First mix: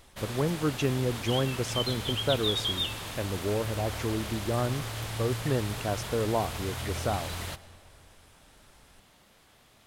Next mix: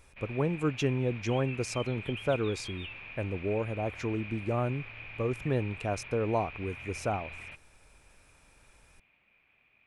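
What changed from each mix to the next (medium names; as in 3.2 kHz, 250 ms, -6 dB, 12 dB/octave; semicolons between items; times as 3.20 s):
background: add four-pole ladder low-pass 2.5 kHz, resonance 90%; reverb: off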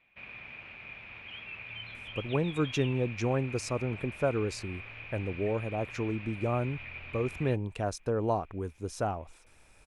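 speech: entry +1.95 s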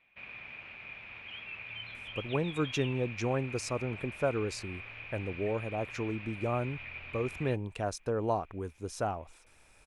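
master: add bass shelf 430 Hz -3.5 dB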